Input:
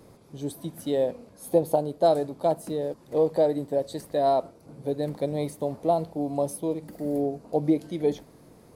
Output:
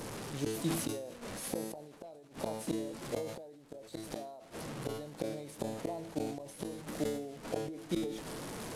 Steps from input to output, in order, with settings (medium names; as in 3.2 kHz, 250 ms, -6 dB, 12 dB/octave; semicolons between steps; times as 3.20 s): one-bit delta coder 64 kbps, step -36.5 dBFS; peaking EQ 73 Hz -5 dB 0.99 oct; inverted gate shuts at -22 dBFS, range -33 dB; feedback comb 110 Hz, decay 0.61 s, harmonics all, mix 50%; decay stretcher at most 51 dB/s; trim +5.5 dB